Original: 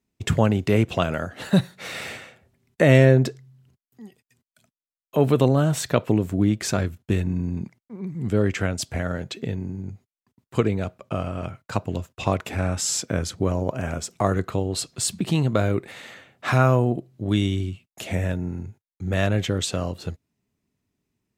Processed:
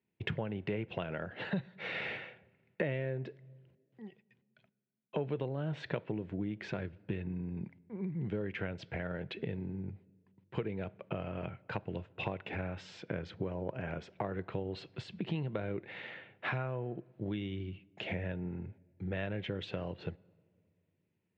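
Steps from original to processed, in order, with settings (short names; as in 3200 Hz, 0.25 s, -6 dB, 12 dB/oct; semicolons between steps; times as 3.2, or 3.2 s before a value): compressor 6:1, threshold -28 dBFS, peak gain reduction 17.5 dB; speaker cabinet 130–3000 Hz, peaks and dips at 250 Hz -9 dB, 680 Hz -4 dB, 1200 Hz -9 dB; on a send: reverb RT60 2.0 s, pre-delay 4 ms, DRR 22.5 dB; on the sum: gain -2 dB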